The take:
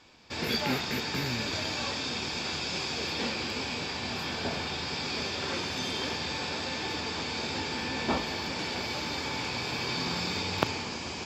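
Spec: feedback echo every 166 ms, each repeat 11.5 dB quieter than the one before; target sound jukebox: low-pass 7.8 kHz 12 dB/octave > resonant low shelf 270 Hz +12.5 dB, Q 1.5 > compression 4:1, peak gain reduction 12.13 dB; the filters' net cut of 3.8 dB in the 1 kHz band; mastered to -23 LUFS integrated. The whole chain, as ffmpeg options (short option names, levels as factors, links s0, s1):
-af "lowpass=7800,lowshelf=f=270:t=q:w=1.5:g=12.5,equalizer=f=1000:t=o:g=-3.5,aecho=1:1:166|332|498:0.266|0.0718|0.0194,acompressor=threshold=0.0398:ratio=4,volume=2.66"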